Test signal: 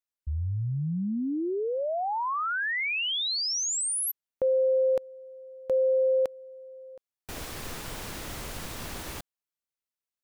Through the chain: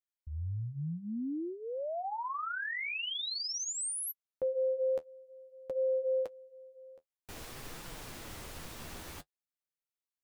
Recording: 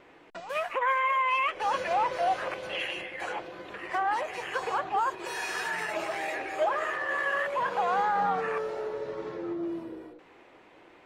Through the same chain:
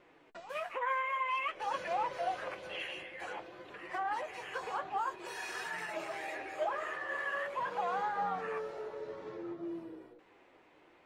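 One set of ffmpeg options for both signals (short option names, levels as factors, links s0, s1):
-af "flanger=delay=5.5:depth=8:regen=-37:speed=0.51:shape=triangular,volume=0.631"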